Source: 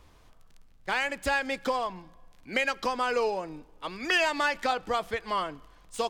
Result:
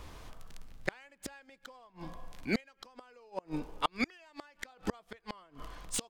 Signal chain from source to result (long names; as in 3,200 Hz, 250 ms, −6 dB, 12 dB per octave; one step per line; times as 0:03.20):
0:02.60–0:04.93: downward compressor 2.5 to 1, threshold −30 dBFS, peak gain reduction 6.5 dB
gate with flip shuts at −25 dBFS, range −35 dB
level +8.5 dB